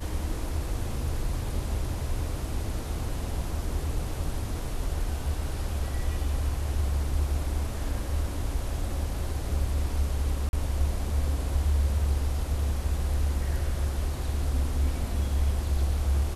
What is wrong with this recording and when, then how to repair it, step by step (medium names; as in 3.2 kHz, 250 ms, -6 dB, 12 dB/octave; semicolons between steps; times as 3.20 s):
10.49–10.53 s: dropout 41 ms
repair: interpolate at 10.49 s, 41 ms